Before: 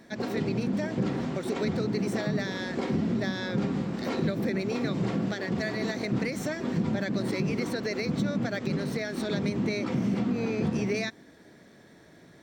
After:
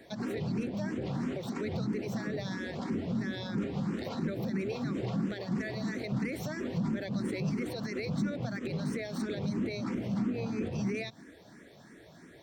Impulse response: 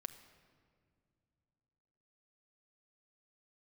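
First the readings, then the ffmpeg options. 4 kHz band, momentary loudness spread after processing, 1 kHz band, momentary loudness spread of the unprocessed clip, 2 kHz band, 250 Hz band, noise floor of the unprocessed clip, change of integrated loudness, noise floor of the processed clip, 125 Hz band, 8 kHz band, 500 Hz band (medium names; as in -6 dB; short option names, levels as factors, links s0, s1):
-6.5 dB, 4 LU, -6.0 dB, 3 LU, -6.5 dB, -4.5 dB, -54 dBFS, -5.0 dB, -55 dBFS, -3.5 dB, -6.5 dB, -6.0 dB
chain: -filter_complex "[0:a]acrossover=split=200[s0][s1];[s0]asoftclip=type=tanh:threshold=0.0266[s2];[s1]alimiter=level_in=2:limit=0.0631:level=0:latency=1:release=111,volume=0.501[s3];[s2][s3]amix=inputs=2:normalize=0,asplit=2[s4][s5];[s5]afreqshift=3[s6];[s4][s6]amix=inputs=2:normalize=1,volume=1.41"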